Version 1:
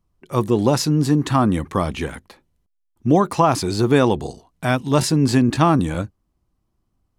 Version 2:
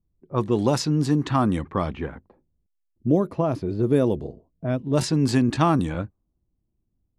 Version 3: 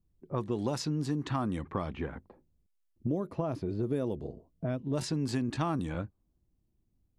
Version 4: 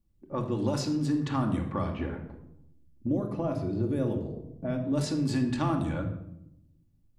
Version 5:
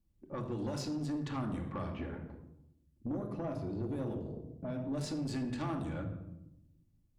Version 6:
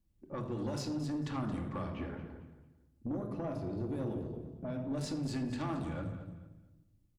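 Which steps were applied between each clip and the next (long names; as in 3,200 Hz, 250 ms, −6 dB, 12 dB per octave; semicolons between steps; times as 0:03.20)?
gain on a spectral selection 0:02.85–0:04.97, 670–9,600 Hz −11 dB; low-pass that shuts in the quiet parts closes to 430 Hz, open at −12 dBFS; level −4 dB
downward compressor 3 to 1, threshold −32 dBFS, peak gain reduction 13.5 dB
rectangular room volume 2,300 cubic metres, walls furnished, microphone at 2.4 metres
in parallel at 0 dB: downward compressor, threshold −36 dBFS, peak gain reduction 13 dB; on the sum: tube saturation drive 22 dB, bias 0.35; level −8 dB
repeating echo 224 ms, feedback 28%, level −12.5 dB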